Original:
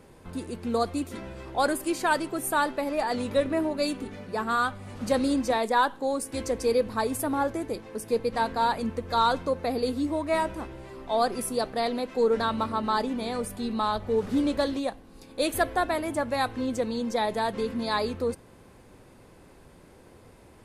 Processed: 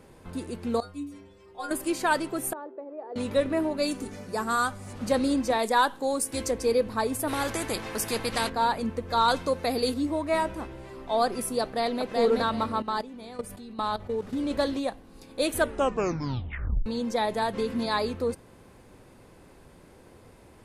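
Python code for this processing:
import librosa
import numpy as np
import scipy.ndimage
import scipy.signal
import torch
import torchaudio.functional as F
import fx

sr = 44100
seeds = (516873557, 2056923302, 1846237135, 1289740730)

y = fx.stiff_resonator(x, sr, f0_hz=92.0, decay_s=0.54, stiffness=0.008, at=(0.8, 1.71))
y = fx.ladder_bandpass(y, sr, hz=440.0, resonance_pct=65, at=(2.53, 3.16))
y = fx.high_shelf_res(y, sr, hz=4600.0, db=8.0, q=1.5, at=(3.91, 4.93))
y = fx.high_shelf(y, sr, hz=4200.0, db=7.5, at=(5.59, 6.51))
y = fx.spectral_comp(y, sr, ratio=2.0, at=(7.27, 8.48), fade=0.02)
y = fx.high_shelf(y, sr, hz=2200.0, db=8.5, at=(9.28, 9.94))
y = fx.echo_throw(y, sr, start_s=11.62, length_s=0.49, ms=380, feedback_pct=25, wet_db=-2.5)
y = fx.level_steps(y, sr, step_db=14, at=(12.82, 14.51))
y = fx.band_squash(y, sr, depth_pct=70, at=(17.42, 17.86))
y = fx.edit(y, sr, fx.tape_stop(start_s=15.51, length_s=1.35), tone=tone)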